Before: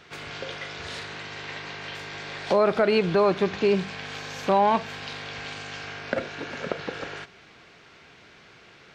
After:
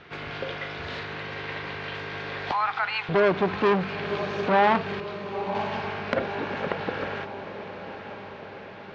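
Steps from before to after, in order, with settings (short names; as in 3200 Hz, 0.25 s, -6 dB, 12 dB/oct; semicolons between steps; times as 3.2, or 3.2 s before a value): 2.51–3.09 steep high-pass 750 Hz 96 dB/oct; 5–5.55 expander -28 dBFS; air absorption 250 m; diffused feedback echo 0.985 s, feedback 58%, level -11.5 dB; core saturation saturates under 1400 Hz; gain +4.5 dB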